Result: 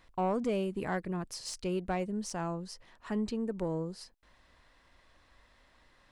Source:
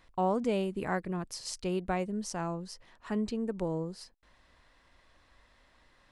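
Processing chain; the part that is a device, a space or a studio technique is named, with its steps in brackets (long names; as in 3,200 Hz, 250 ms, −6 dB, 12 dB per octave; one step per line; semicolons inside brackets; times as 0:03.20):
saturation between pre-emphasis and de-emphasis (high-shelf EQ 2,300 Hz +9.5 dB; soft clipping −22 dBFS, distortion −18 dB; high-shelf EQ 2,300 Hz −9.5 dB)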